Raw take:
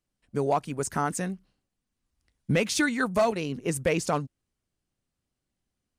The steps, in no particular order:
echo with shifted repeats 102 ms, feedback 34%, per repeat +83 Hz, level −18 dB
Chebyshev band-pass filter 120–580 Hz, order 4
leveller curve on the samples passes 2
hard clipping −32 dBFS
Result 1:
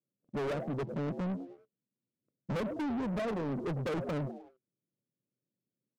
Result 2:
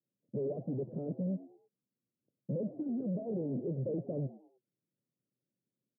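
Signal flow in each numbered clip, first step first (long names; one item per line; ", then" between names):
Chebyshev band-pass filter, then echo with shifted repeats, then hard clipping, then leveller curve on the samples
leveller curve on the samples, then hard clipping, then Chebyshev band-pass filter, then echo with shifted repeats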